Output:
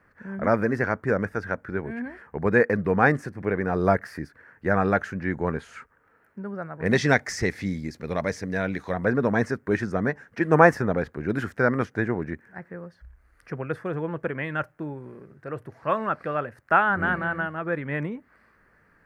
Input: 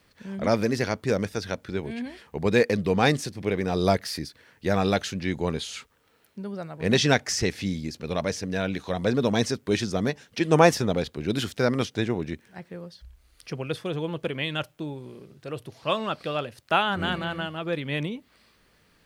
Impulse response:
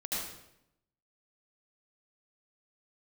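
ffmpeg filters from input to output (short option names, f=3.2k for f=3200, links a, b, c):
-af "asetnsamples=n=441:p=0,asendcmd='6.86 highshelf g -6;8.94 highshelf g -12.5',highshelf=f=2.4k:t=q:w=3:g=-14"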